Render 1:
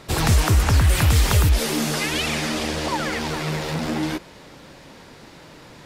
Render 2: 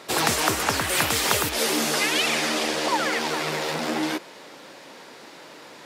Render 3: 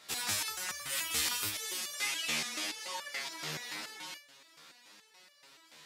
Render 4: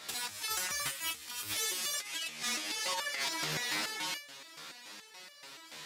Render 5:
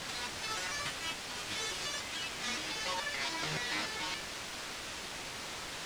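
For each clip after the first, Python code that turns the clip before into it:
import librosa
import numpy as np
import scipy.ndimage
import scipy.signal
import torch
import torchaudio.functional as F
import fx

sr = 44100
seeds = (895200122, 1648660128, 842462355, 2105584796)

y1 = scipy.signal.sosfilt(scipy.signal.butter(2, 330.0, 'highpass', fs=sr, output='sos'), x)
y1 = F.gain(torch.from_numpy(y1), 2.0).numpy()
y2 = fx.tone_stack(y1, sr, knobs='5-5-5')
y2 = fx.resonator_held(y2, sr, hz=7.0, low_hz=77.0, high_hz=580.0)
y2 = F.gain(torch.from_numpy(y2), 8.5).numpy()
y3 = fx.over_compress(y2, sr, threshold_db=-40.0, ratio=-0.5)
y3 = 10.0 ** (-30.5 / 20.0) * np.tanh(y3 / 10.0 ** (-30.5 / 20.0))
y3 = F.gain(torch.from_numpy(y3), 5.0).numpy()
y4 = fx.quant_dither(y3, sr, seeds[0], bits=6, dither='triangular')
y4 = fx.air_absorb(y4, sr, metres=93.0)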